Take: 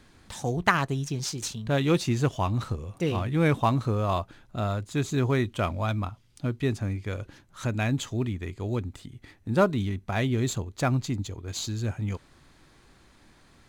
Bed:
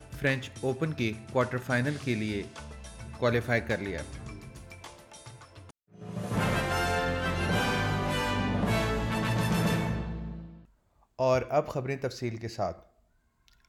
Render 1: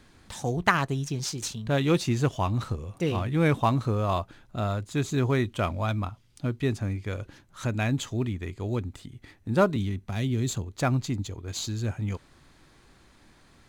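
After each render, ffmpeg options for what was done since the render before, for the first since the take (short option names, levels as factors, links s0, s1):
-filter_complex "[0:a]asettb=1/sr,asplit=3[s0][s1][s2];[s0]atrim=end=9.764[s3];[s1]atrim=start=9.76:end=10.76,asetpts=PTS-STARTPTS,afade=t=in:d=0.004:c=qsin,afade=t=out:st=0.996:d=0.004:c=qsin,acrossover=split=330|3000[s4][s5][s6];[s5]acompressor=threshold=0.00794:ratio=2.5:attack=3.2:release=140:knee=2.83:detection=peak[s7];[s4][s7][s6]amix=inputs=3:normalize=0[s8];[s2]atrim=start=10.756[s9];[s3][s8]acrossfade=d=0.004:c1=hsin:c2=qsin[s10];[s10][s9]acrossfade=d=0.004:c1=qsin:c2=hsin"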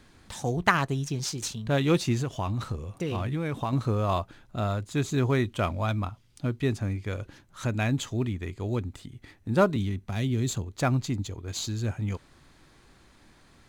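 -filter_complex "[0:a]asettb=1/sr,asplit=3[s0][s1][s2];[s0]atrim=end=2.214[s3];[s1]atrim=start=2.21:end=3.73,asetpts=PTS-STARTPTS,afade=t=in:d=0.004:c=qsin,afade=t=out:st=1.516:d=0.004:c=qsin,acompressor=threshold=0.0562:ratio=6:attack=3.2:release=140:knee=1:detection=peak[s4];[s2]atrim=start=3.726[s5];[s3][s4]acrossfade=d=0.004:c1=hsin:c2=qsin[s6];[s6][s5]acrossfade=d=0.004:c1=qsin:c2=hsin"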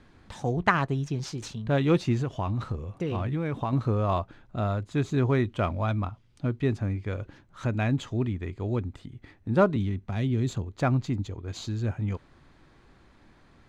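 -af "aemphasis=mode=reproduction:type=75fm"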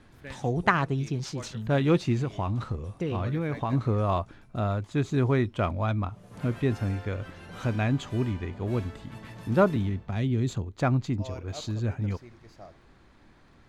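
-filter_complex "[1:a]volume=0.15[s0];[0:a][s0]amix=inputs=2:normalize=0"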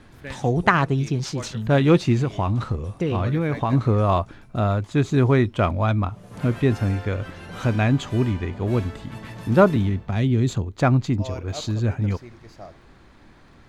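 -af "volume=2.11,alimiter=limit=0.794:level=0:latency=1"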